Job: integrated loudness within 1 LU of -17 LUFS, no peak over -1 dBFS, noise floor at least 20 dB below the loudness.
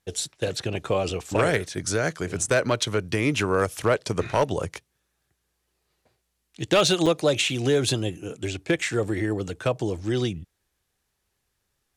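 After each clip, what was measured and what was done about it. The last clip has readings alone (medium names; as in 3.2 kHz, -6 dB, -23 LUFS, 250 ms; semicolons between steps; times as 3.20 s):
clipped samples 0.2%; clipping level -13.0 dBFS; dropouts 2; longest dropout 5.4 ms; loudness -25.0 LUFS; peak level -13.0 dBFS; loudness target -17.0 LUFS
-> clip repair -13 dBFS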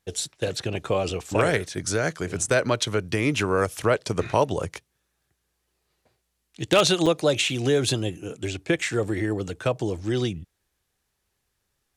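clipped samples 0.0%; dropouts 2; longest dropout 5.4 ms
-> interpolate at 2.50/7.06 s, 5.4 ms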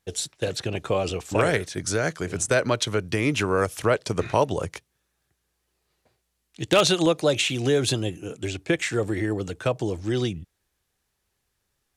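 dropouts 0; loudness -24.5 LUFS; peak level -4.0 dBFS; loudness target -17.0 LUFS
-> trim +7.5 dB; peak limiter -1 dBFS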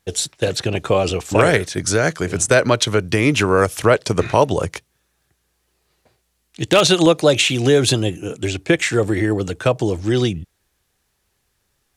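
loudness -17.5 LUFS; peak level -1.0 dBFS; noise floor -69 dBFS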